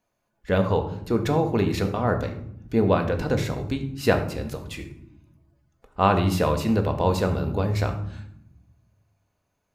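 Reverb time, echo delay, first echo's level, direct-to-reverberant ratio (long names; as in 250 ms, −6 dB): 0.80 s, no echo audible, no echo audible, 5.0 dB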